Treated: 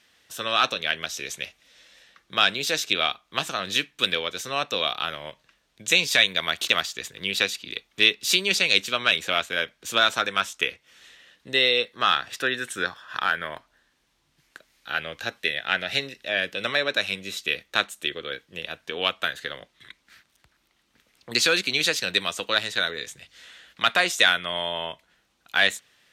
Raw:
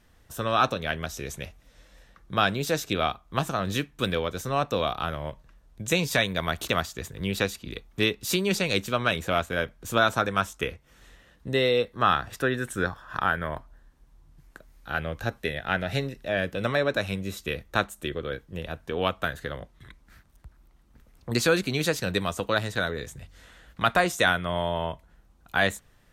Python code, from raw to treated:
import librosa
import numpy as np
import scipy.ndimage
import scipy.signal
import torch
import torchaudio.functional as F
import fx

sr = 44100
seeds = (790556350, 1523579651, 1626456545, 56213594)

p1 = fx.low_shelf(x, sr, hz=190.0, db=-8.5)
p2 = fx.clip_asym(p1, sr, top_db=-14.5, bottom_db=-13.5)
p3 = p1 + F.gain(torch.from_numpy(p2), -3.0).numpy()
p4 = fx.weighting(p3, sr, curve='D')
y = F.gain(torch.from_numpy(p4), -6.5).numpy()